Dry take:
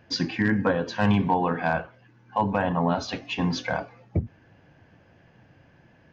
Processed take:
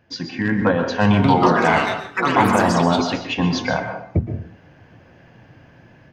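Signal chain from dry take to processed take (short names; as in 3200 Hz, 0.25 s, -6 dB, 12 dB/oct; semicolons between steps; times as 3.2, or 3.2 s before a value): AGC gain up to 11 dB; 1.05–3.42 echoes that change speed 0.191 s, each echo +5 st, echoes 3; plate-style reverb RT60 0.54 s, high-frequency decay 0.55×, pre-delay 0.11 s, DRR 6.5 dB; gain -3.5 dB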